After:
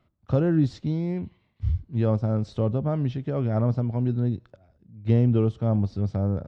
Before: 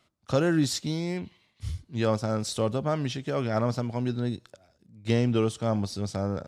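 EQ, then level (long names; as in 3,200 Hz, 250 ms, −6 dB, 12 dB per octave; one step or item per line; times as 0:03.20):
low-shelf EQ 130 Hz +11.5 dB
dynamic equaliser 1,600 Hz, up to −4 dB, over −39 dBFS, Q 0.83
head-to-tape spacing loss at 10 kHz 34 dB
+1.0 dB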